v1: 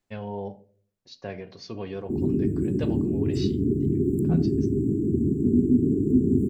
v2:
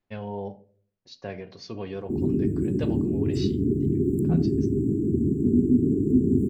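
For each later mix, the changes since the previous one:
second voice: add air absorption 180 m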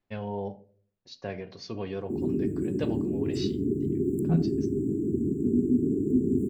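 background: add low shelf 190 Hz -10.5 dB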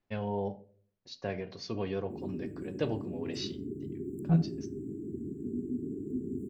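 background -11.5 dB

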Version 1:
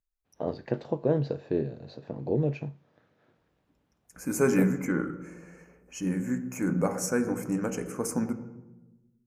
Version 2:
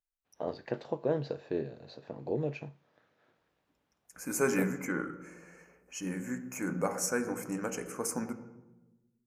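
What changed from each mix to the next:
master: add low shelf 380 Hz -10.5 dB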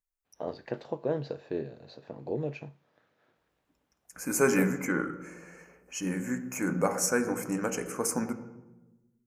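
second voice +4.5 dB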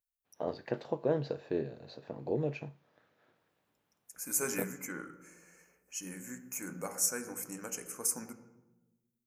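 second voice: add pre-emphasis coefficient 0.8

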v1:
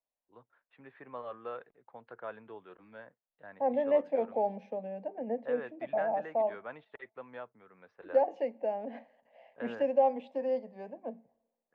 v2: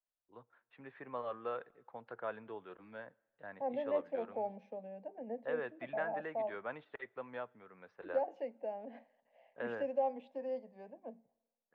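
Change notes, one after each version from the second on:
first voice: send on; second voice -8.0 dB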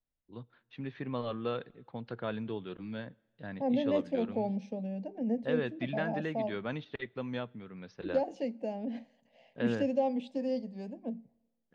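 master: remove three-band isolator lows -20 dB, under 490 Hz, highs -24 dB, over 2000 Hz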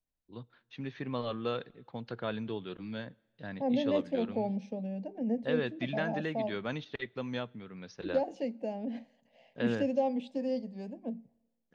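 first voice: remove air absorption 170 m

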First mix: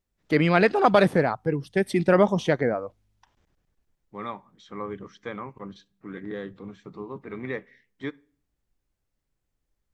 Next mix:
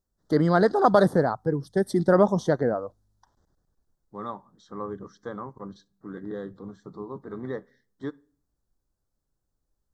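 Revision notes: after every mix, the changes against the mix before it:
master: add Butterworth band-stop 2500 Hz, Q 1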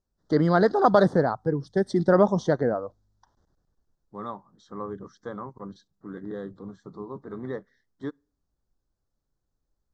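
first voice: add LPF 6800 Hz 24 dB/oct; second voice: send -11.5 dB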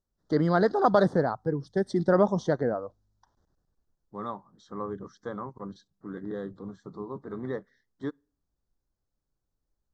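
first voice -3.0 dB

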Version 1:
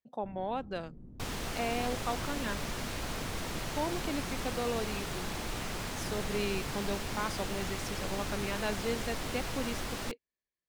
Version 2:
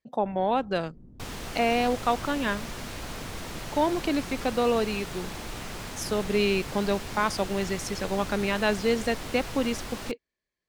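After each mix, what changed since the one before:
speech +10.0 dB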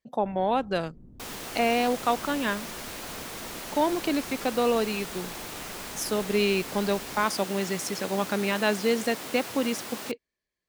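second sound: add HPF 230 Hz 12 dB/oct; master: add high shelf 11000 Hz +11.5 dB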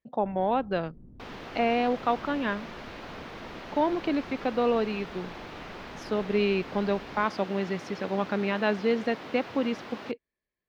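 master: add air absorption 270 m

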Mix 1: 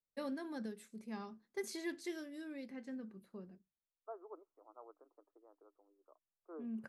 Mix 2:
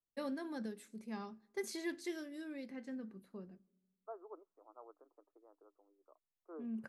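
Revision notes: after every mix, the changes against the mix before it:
reverb: on, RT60 1.1 s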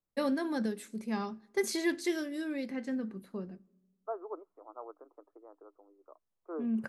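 first voice +10.0 dB; second voice +10.5 dB

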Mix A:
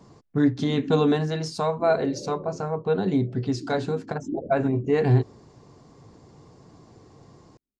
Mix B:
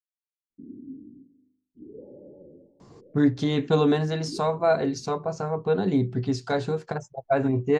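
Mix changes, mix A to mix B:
speech: entry +2.80 s; background -8.0 dB

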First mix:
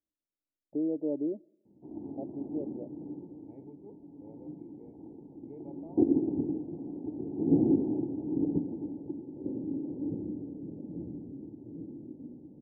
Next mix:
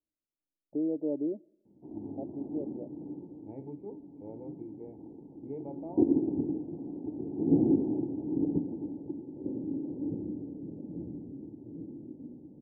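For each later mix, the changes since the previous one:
second voice +8.0 dB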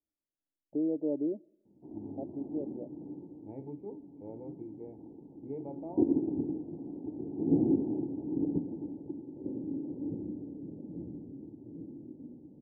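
background: send off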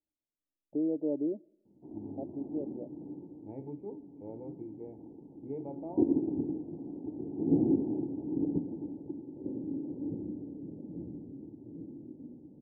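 second voice: send +9.5 dB

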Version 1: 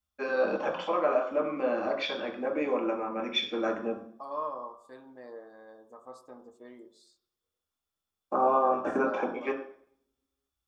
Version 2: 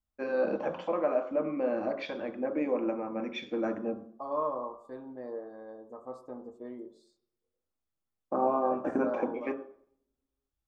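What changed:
first voice: send -9.5 dB; master: add tilt shelf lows +8.5 dB, about 1200 Hz

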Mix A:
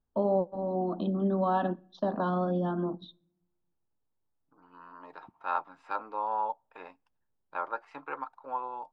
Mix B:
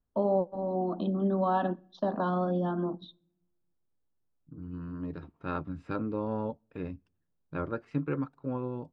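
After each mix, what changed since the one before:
second voice: remove resonant high-pass 860 Hz, resonance Q 4.6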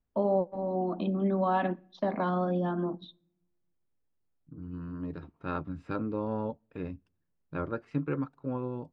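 first voice: remove Butterworth band-stop 2200 Hz, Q 1.7

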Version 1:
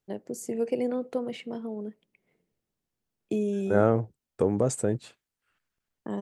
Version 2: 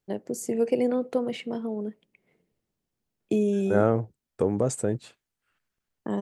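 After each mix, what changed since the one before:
first voice +4.0 dB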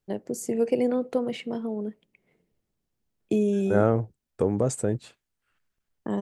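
master: add low shelf 67 Hz +7.5 dB

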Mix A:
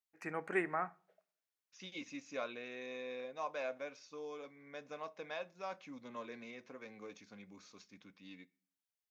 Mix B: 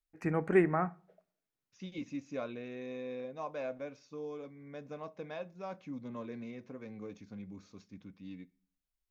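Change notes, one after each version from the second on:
second voice -5.0 dB; master: remove HPF 1200 Hz 6 dB/oct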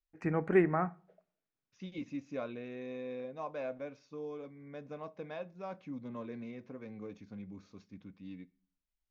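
master: add air absorption 86 m

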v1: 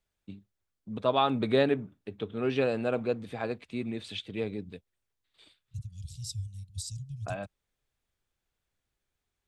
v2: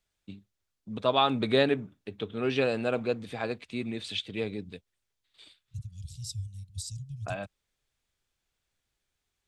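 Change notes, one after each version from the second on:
first voice: add bell 5300 Hz +6 dB 2.8 oct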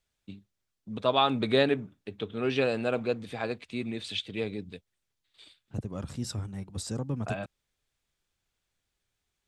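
second voice: remove inverse Chebyshev band-stop 270–1600 Hz, stop band 50 dB

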